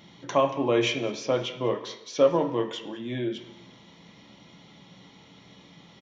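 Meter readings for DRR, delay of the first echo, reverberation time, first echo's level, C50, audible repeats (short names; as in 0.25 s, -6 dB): 2.0 dB, 0.2 s, 1.1 s, -21.5 dB, 9.0 dB, 1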